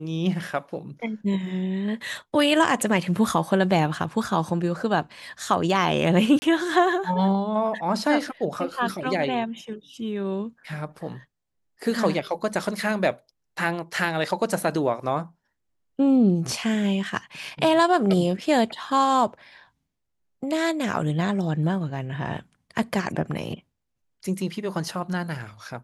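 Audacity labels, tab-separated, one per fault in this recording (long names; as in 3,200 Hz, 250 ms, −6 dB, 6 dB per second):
6.390000	6.420000	drop-out 30 ms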